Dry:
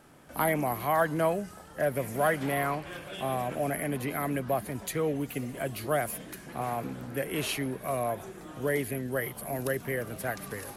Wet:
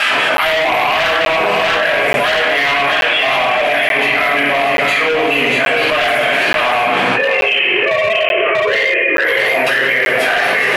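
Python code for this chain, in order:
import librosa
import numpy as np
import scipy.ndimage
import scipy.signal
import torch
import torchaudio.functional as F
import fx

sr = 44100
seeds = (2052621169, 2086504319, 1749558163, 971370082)

y = fx.sine_speech(x, sr, at=(7.09, 9.24))
y = fx.filter_lfo_bandpass(y, sr, shape='square', hz=5.5, low_hz=880.0, high_hz=2300.0, q=0.92)
y = fx.low_shelf(y, sr, hz=240.0, db=-12.0)
y = fx.room_shoebox(y, sr, seeds[0], volume_m3=430.0, walls='mixed', distance_m=6.6)
y = np.clip(10.0 ** (20.0 / 20.0) * y, -1.0, 1.0) / 10.0 ** (20.0 / 20.0)
y = fx.peak_eq(y, sr, hz=2700.0, db=13.5, octaves=1.2)
y = y + 10.0 ** (-8.0 / 20.0) * np.pad(y, (int(640 * sr / 1000.0), 0))[:len(y)]
y = fx.buffer_crackle(y, sr, first_s=0.37, period_s=0.88, block=512, kind='zero')
y = fx.env_flatten(y, sr, amount_pct=100)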